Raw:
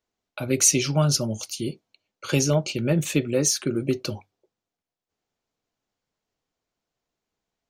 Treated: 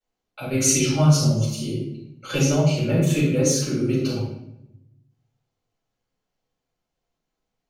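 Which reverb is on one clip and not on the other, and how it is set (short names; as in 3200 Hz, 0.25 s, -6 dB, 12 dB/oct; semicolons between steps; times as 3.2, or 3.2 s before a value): shoebox room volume 260 m³, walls mixed, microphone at 6.9 m; gain -15 dB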